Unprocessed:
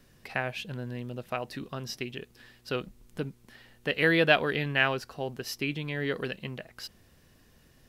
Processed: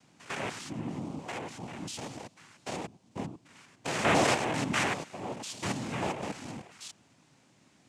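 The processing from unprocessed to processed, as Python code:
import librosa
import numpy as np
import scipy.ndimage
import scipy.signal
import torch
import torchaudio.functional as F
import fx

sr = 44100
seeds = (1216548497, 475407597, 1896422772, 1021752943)

y = fx.spec_steps(x, sr, hold_ms=100)
y = fx.noise_vocoder(y, sr, seeds[0], bands=4)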